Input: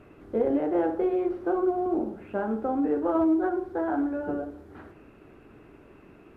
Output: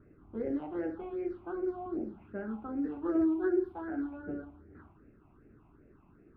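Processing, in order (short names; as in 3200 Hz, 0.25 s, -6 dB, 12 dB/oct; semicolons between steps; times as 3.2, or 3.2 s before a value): 3.03–3.72 small resonant body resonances 370/1700 Hz, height 10 dB, ringing for 35 ms; phaser stages 6, 2.6 Hz, lowest notch 450–1000 Hz; low-pass opened by the level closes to 1200 Hz, open at -21 dBFS; gain -5.5 dB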